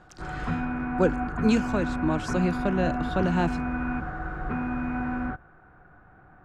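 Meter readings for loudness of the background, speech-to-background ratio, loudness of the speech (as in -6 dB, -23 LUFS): -30.5 LUFS, 3.0 dB, -27.5 LUFS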